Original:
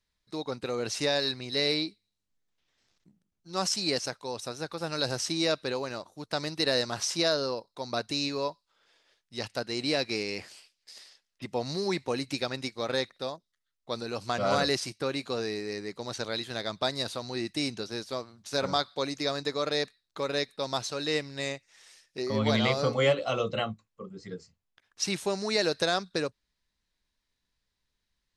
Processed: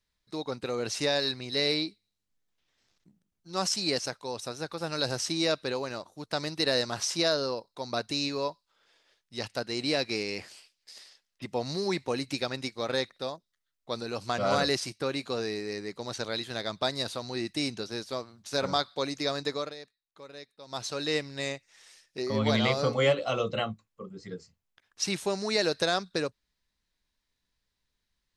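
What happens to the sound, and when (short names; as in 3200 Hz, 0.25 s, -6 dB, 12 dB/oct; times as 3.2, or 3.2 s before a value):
19.53–20.88 dip -16 dB, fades 0.22 s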